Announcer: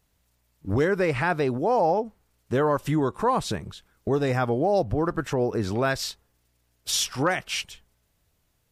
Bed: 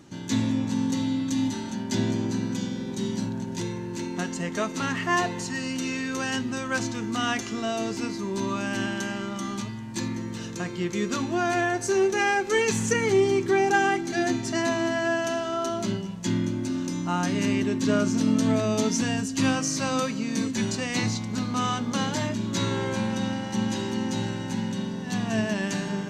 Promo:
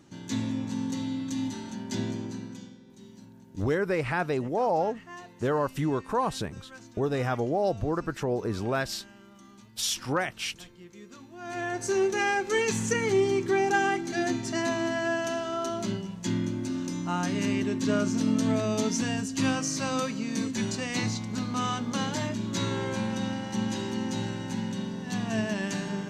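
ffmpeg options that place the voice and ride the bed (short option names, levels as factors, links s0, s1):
-filter_complex "[0:a]adelay=2900,volume=0.631[s0];[1:a]volume=3.98,afade=t=out:st=2:d=0.8:silence=0.177828,afade=t=in:st=11.37:d=0.51:silence=0.133352[s1];[s0][s1]amix=inputs=2:normalize=0"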